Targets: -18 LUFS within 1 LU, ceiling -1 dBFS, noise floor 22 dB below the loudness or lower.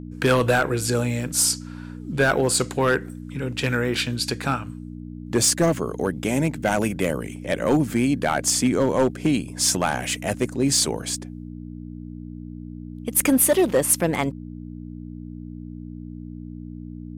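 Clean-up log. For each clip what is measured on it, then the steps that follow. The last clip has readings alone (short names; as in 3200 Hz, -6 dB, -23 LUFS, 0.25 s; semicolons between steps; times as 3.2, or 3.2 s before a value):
clipped 0.6%; flat tops at -12.0 dBFS; hum 60 Hz; harmonics up to 300 Hz; hum level -33 dBFS; loudness -22.0 LUFS; peak -12.0 dBFS; loudness target -18.0 LUFS
-> clip repair -12 dBFS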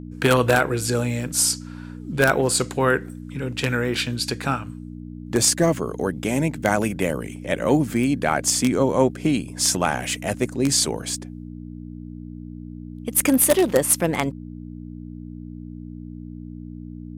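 clipped 0.0%; hum 60 Hz; harmonics up to 300 Hz; hum level -33 dBFS
-> de-hum 60 Hz, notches 5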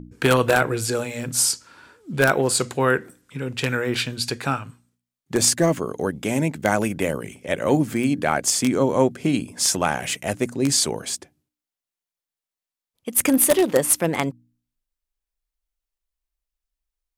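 hum none; loudness -21.5 LUFS; peak -2.0 dBFS; loudness target -18.0 LUFS
-> gain +3.5 dB; limiter -1 dBFS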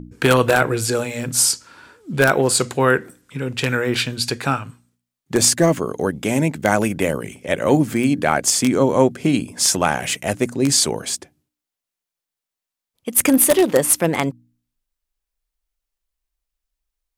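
loudness -18.5 LUFS; peak -1.0 dBFS; noise floor -86 dBFS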